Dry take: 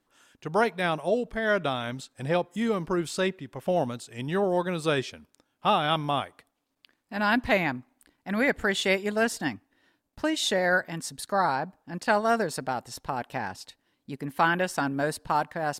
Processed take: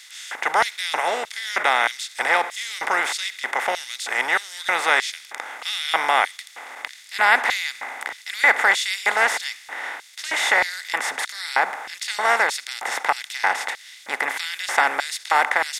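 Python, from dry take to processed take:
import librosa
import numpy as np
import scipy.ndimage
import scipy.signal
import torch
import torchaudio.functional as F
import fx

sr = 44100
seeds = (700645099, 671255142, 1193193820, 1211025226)

y = fx.bin_compress(x, sr, power=0.4)
y = fx.graphic_eq_31(y, sr, hz=(100, 630, 1000, 2000, 4000), db=(6, -7, -3, 10, -5))
y = fx.filter_lfo_highpass(y, sr, shape='square', hz=1.6, low_hz=790.0, high_hz=4200.0, q=1.9)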